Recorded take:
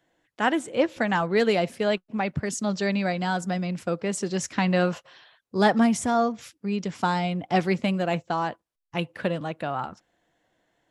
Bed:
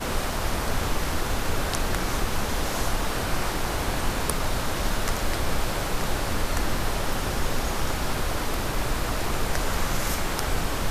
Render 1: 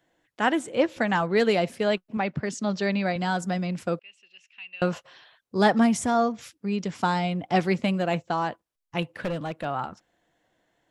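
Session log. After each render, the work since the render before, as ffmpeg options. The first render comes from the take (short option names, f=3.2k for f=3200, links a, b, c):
-filter_complex "[0:a]asettb=1/sr,asplit=3[a][b][c];[a]atrim=end=2.174[d];[b]atrim=start=2.17:end=3.16,asetpts=PTS-STARTPTS,afade=t=in:d=0.004:c=qsin,afade=t=out:st=0.986:d=0.004:c=qsin,highpass=120,lowpass=5.6k[e];[c]atrim=start=3.156[f];[d][e]acrossfade=d=0.004:c1=hsin:c2=qsin[g];[g][f]acrossfade=d=0.004:c1=qsin:c2=hsin,asettb=1/sr,asplit=3[h][i][j];[h]atrim=end=3.994[k];[i]atrim=start=3.99:end=4.82,asetpts=PTS-STARTPTS,afade=t=in:d=0.004:c=qsin,afade=t=out:st=0.826:d=0.004:c=qsin,bandpass=f=2.7k:t=q:w=18[l];[j]atrim=start=4.816[m];[k][l]acrossfade=d=0.004:c1=hsin:c2=qsin[n];[n][m]acrossfade=d=0.004:c1=qsin:c2=hsin,asettb=1/sr,asplit=3[o][p][q];[o]atrim=end=9.024[r];[p]atrim=start=9.02:end=9.65,asetpts=PTS-STARTPTS,afade=t=in:d=0.004:c=qsin,afade=t=out:st=0.626:d=0.004:c=qsin,asoftclip=type=hard:threshold=-24dB[s];[q]atrim=start=9.646[t];[r][s]acrossfade=d=0.004:c1=hsin:c2=qsin[u];[u][t]acrossfade=d=0.004:c1=qsin:c2=hsin"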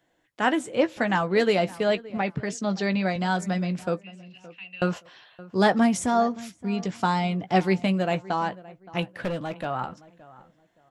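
-filter_complex "[0:a]asplit=2[a][b];[b]adelay=16,volume=-11.5dB[c];[a][c]amix=inputs=2:normalize=0,asplit=2[d][e];[e]adelay=570,lowpass=f=1.8k:p=1,volume=-19dB,asplit=2[f][g];[g]adelay=570,lowpass=f=1.8k:p=1,volume=0.27[h];[d][f][h]amix=inputs=3:normalize=0"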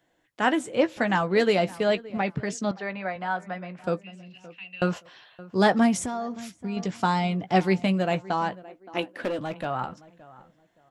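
-filter_complex "[0:a]asettb=1/sr,asplit=3[a][b][c];[a]atrim=end=2.714[d];[b]atrim=start=2.71:end=3.84,asetpts=PTS-STARTPTS,afade=t=in:d=0.004:c=qsin,afade=t=out:st=1.126:d=0.004:c=qsin,acrossover=split=540 2400:gain=0.224 1 0.0891[e][f][g];[e][f][g]amix=inputs=3:normalize=0[h];[c]atrim=start=3.836[i];[d][h]acrossfade=d=0.004:c1=hsin:c2=qsin[j];[j][i]acrossfade=d=0.004:c1=qsin:c2=hsin,asettb=1/sr,asplit=3[k][l][m];[k]atrim=end=6.014[n];[l]atrim=start=6.01:end=6.77,asetpts=PTS-STARTPTS,afade=t=in:d=0.004:c=qsin,afade=t=out:st=0.756:d=0.004:c=qsin,acompressor=threshold=-26dB:ratio=10:attack=3.2:release=140:knee=1:detection=peak[o];[m]atrim=start=6.766[p];[n][o]acrossfade=d=0.004:c1=hsin:c2=qsin[q];[q][p]acrossfade=d=0.004:c1=qsin:c2=hsin,asettb=1/sr,asplit=3[r][s][t];[r]atrim=end=8.634[u];[s]atrim=start=8.63:end=9.39,asetpts=PTS-STARTPTS,afade=t=in:d=0.004:c=qsin,afade=t=out:st=0.756:d=0.004:c=qsin,lowshelf=f=200:t=q:w=3:g=-9[v];[t]atrim=start=9.386[w];[u][v]acrossfade=d=0.004:c1=hsin:c2=qsin[x];[x][w]acrossfade=d=0.004:c1=qsin:c2=hsin"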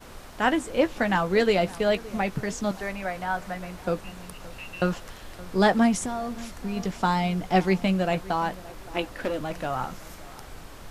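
-filter_complex "[1:a]volume=-17dB[a];[0:a][a]amix=inputs=2:normalize=0"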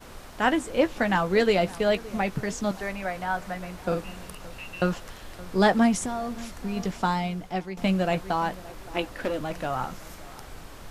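-filter_complex "[0:a]asettb=1/sr,asplit=3[a][b][c];[a]atrim=end=3.864[d];[b]atrim=start=3.86:end=4.35,asetpts=PTS-STARTPTS,afade=t=in:d=0.004:c=qsin,afade=t=out:st=0.486:d=0.004:c=qsin,asplit=2[e][f];[f]adelay=48,volume=-5.5dB[g];[e][g]amix=inputs=2:normalize=0,atrim=end_sample=21609[h];[c]atrim=start=4.346[i];[d][h]acrossfade=d=0.004:c1=hsin:c2=qsin[j];[j][i]acrossfade=d=0.004:c1=qsin:c2=hsin,asplit=2[k][l];[k]atrim=end=7.77,asetpts=PTS-STARTPTS,afade=t=out:st=6.92:d=0.85:silence=0.158489[m];[l]atrim=start=7.77,asetpts=PTS-STARTPTS,afade=t=in:d=0.004:c=hsin:silence=0.158489[n];[m][n]concat=n=2:v=0:a=1"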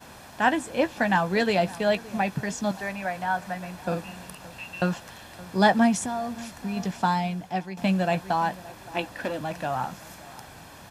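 -af "highpass=110,aecho=1:1:1.2:0.42"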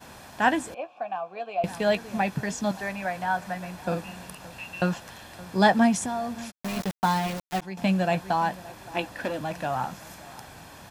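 -filter_complex "[0:a]asettb=1/sr,asplit=3[a][b][c];[a]atrim=end=0.744[d];[b]atrim=start=0.74:end=1.64,asetpts=PTS-STARTPTS,afade=t=in:d=0.004:c=qsin,afade=t=out:st=0.896:d=0.004:c=qsin,asplit=3[e][f][g];[e]bandpass=f=730:t=q:w=8,volume=0dB[h];[f]bandpass=f=1.09k:t=q:w=8,volume=-6dB[i];[g]bandpass=f=2.44k:t=q:w=8,volume=-9dB[j];[h][i][j]amix=inputs=3:normalize=0[k];[c]atrim=start=1.636[l];[d][k]acrossfade=d=0.004:c1=hsin:c2=qsin[m];[m][l]acrossfade=d=0.004:c1=qsin:c2=hsin,asplit=3[n][o][p];[n]afade=t=out:st=6.5:d=0.02[q];[o]aeval=exprs='val(0)*gte(abs(val(0)),0.0355)':c=same,afade=t=in:st=6.5:d=0.02,afade=t=out:st=7.61:d=0.02[r];[p]afade=t=in:st=7.61:d=0.02[s];[q][r][s]amix=inputs=3:normalize=0"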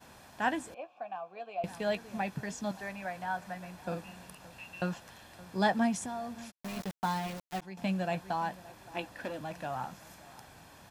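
-af "volume=-8.5dB"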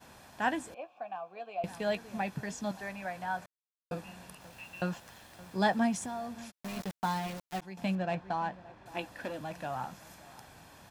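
-filter_complex "[0:a]asettb=1/sr,asplit=3[a][b][c];[a]atrim=end=4.414[d];[b]atrim=start=4.41:end=6.27,asetpts=PTS-STARTPTS,afade=t=in:d=0.004:c=qsin,afade=t=out:st=1.856:d=0.004:c=qsin,aeval=exprs='val(0)*gte(abs(val(0)),0.00178)':c=same[e];[c]atrim=start=6.266[f];[d][e]acrossfade=d=0.004:c1=hsin:c2=qsin[g];[g][f]acrossfade=d=0.004:c1=qsin:c2=hsin,asettb=1/sr,asplit=3[h][i][j];[h]atrim=end=7.954[k];[i]atrim=start=7.95:end=8.86,asetpts=PTS-STARTPTS,afade=t=in:d=0.004:c=qsin,afade=t=out:st=0.906:d=0.004:c=qsin,adynamicsmooth=sensitivity=6:basefreq=2.8k[l];[j]atrim=start=8.856[m];[k][l]acrossfade=d=0.004:c1=hsin:c2=qsin[n];[n][m]acrossfade=d=0.004:c1=qsin:c2=hsin,asplit=3[o][p][q];[o]atrim=end=3.46,asetpts=PTS-STARTPTS,afade=t=out:st=3.456:d=0.004:c=hsin[r];[p]atrim=start=3.46:end=3.91,asetpts=PTS-STARTPTS,volume=0[s];[q]atrim=start=3.91,asetpts=PTS-STARTPTS,afade=t=in:d=0.004:c=hsin[t];[r][s][t]concat=n=3:v=0:a=1"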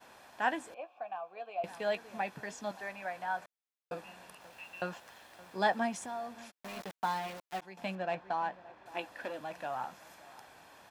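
-af "bass=f=250:g=-14,treble=f=4k:g=-5"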